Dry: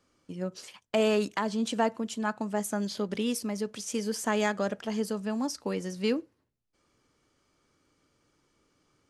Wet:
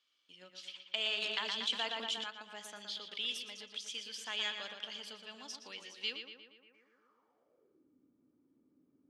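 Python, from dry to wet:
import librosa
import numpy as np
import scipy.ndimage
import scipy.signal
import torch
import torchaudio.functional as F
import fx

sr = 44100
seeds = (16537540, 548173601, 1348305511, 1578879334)

y = fx.echo_filtered(x, sr, ms=118, feedback_pct=63, hz=3700.0, wet_db=-6)
y = fx.filter_sweep_bandpass(y, sr, from_hz=3300.0, to_hz=260.0, start_s=6.57, end_s=7.92, q=4.6)
y = fx.env_flatten(y, sr, amount_pct=50, at=(1.22, 2.24))
y = y * librosa.db_to_amplitude(6.5)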